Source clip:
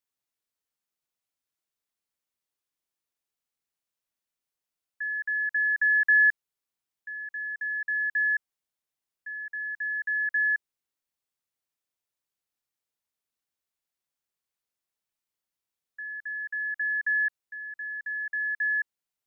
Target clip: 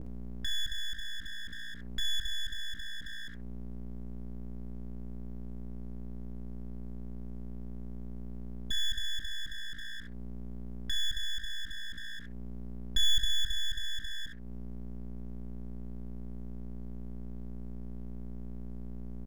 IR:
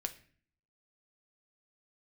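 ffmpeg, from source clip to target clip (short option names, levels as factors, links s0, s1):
-filter_complex "[0:a]areverse,aeval=exprs='val(0)+0.00562*(sin(2*PI*60*n/s)+sin(2*PI*2*60*n/s)/2+sin(2*PI*3*60*n/s)/3+sin(2*PI*4*60*n/s)/4+sin(2*PI*5*60*n/s)/5)':c=same[s0];[1:a]atrim=start_sample=2205,atrim=end_sample=3528[s1];[s0][s1]afir=irnorm=-1:irlink=0,acompressor=mode=upward:threshold=0.02:ratio=2.5,aecho=1:1:15|65:0.473|0.237,aeval=exprs='abs(val(0))':c=same,adynamicequalizer=threshold=0.00562:dfrequency=1600:dqfactor=0.7:tfrequency=1600:tqfactor=0.7:attack=5:release=100:ratio=0.375:range=2:mode=cutabove:tftype=highshelf"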